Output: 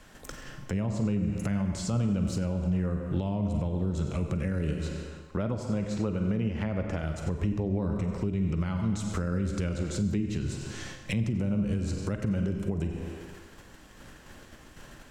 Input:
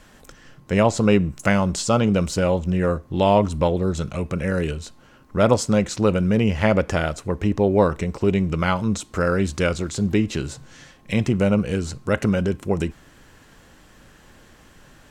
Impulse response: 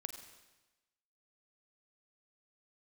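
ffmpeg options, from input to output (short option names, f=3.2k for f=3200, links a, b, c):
-filter_complex "[0:a]asettb=1/sr,asplit=3[a][b][c];[a]atrim=end=4.754[d];[b]atrim=start=4.75:end=7.03,asetpts=PTS-STARTPTS,afade=t=in:d=0.004:c=qsin,afade=t=out:st=2.276:d=0.004:c=qsin,bass=f=250:g=-6,treble=f=4k:g=-7[e];[c]atrim=start=7.026[f];[d][e]acrossfade=d=0.004:c1=hsin:c2=qsin[g];[g][f]acrossfade=d=0.004:c1=qsin:c2=hsin,agate=range=-7dB:threshold=-48dB:ratio=16:detection=peak[h];[1:a]atrim=start_sample=2205[i];[h][i]afir=irnorm=-1:irlink=0,acrossover=split=230[j][k];[k]acompressor=threshold=-40dB:ratio=3[l];[j][l]amix=inputs=2:normalize=0,alimiter=level_in=2.5dB:limit=-24dB:level=0:latency=1:release=484,volume=-2.5dB,volume=7dB"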